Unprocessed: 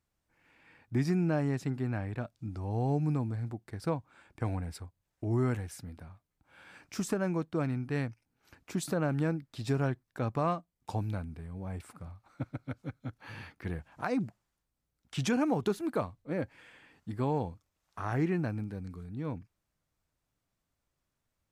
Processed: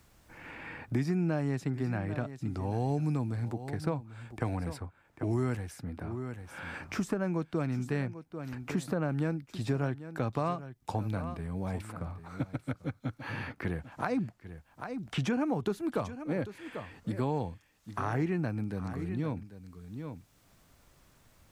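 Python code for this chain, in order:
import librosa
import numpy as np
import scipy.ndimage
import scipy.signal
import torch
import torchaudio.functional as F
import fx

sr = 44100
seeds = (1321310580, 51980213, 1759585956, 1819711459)

p1 = x + fx.echo_single(x, sr, ms=792, db=-16.5, dry=0)
y = fx.band_squash(p1, sr, depth_pct=70)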